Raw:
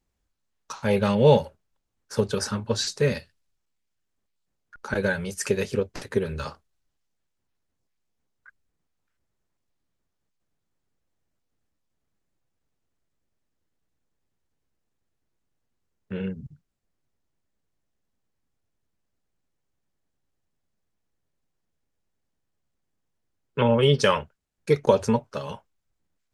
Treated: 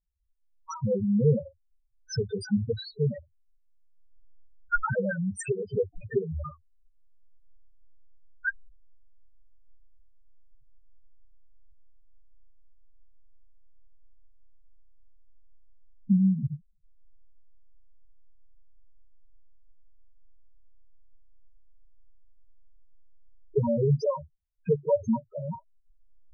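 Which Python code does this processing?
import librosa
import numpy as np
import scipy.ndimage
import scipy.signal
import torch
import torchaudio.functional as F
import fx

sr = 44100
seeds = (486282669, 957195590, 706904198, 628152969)

y = fx.envelope_flatten(x, sr, power=0.6)
y = fx.recorder_agc(y, sr, target_db=-9.5, rise_db_per_s=26.0, max_gain_db=30)
y = fx.lowpass(y, sr, hz=4300.0, slope=12, at=(2.45, 3.03))
y = fx.spec_topn(y, sr, count=2)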